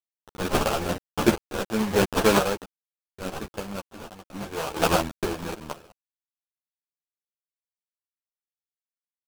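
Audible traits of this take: a quantiser's noise floor 6-bit, dither none; random-step tremolo 2.1 Hz, depth 95%; aliases and images of a low sample rate 2 kHz, jitter 20%; a shimmering, thickened sound

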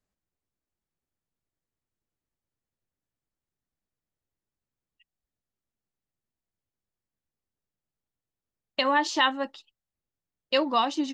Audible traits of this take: noise floor -91 dBFS; spectral tilt -5.5 dB/octave

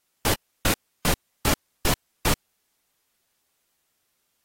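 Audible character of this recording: a quantiser's noise floor 12-bit, dither triangular; AAC

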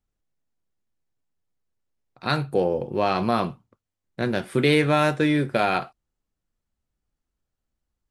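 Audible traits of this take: noise floor -84 dBFS; spectral tilt -4.5 dB/octave

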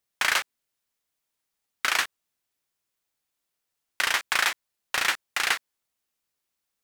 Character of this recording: noise floor -83 dBFS; spectral tilt 0.0 dB/octave

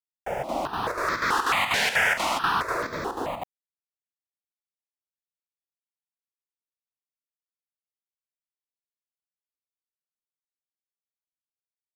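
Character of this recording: a quantiser's noise floor 10-bit, dither none; chopped level 4.1 Hz, depth 60%, duty 75%; notches that jump at a steady rate 4.6 Hz 320–2900 Hz

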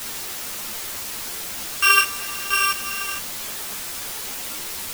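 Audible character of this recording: a buzz of ramps at a fixed pitch in blocks of 16 samples; random-step tremolo, depth 55%; a quantiser's noise floor 6-bit, dither triangular; a shimmering, thickened sound

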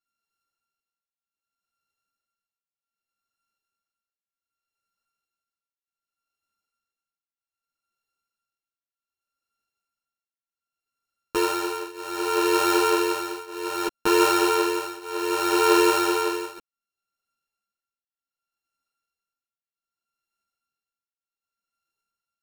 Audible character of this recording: a buzz of ramps at a fixed pitch in blocks of 32 samples; tremolo triangle 0.65 Hz, depth 95%; a shimmering, thickened sound

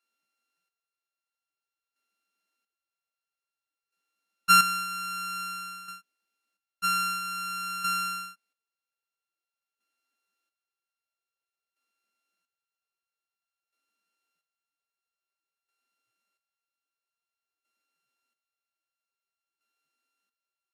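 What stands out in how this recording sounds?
a buzz of ramps at a fixed pitch in blocks of 32 samples; chopped level 0.51 Hz, depth 65%, duty 35%; Vorbis

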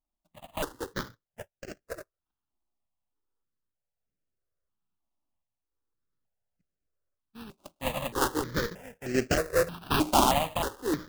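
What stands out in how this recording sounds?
a buzz of ramps at a fixed pitch in blocks of 16 samples; random-step tremolo; aliases and images of a low sample rate 2.2 kHz, jitter 20%; notches that jump at a steady rate 3.2 Hz 480–3600 Hz

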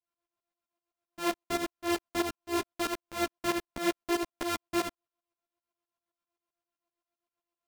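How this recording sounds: a buzz of ramps at a fixed pitch in blocks of 128 samples; tremolo saw up 7.7 Hz, depth 95%; a shimmering, thickened sound

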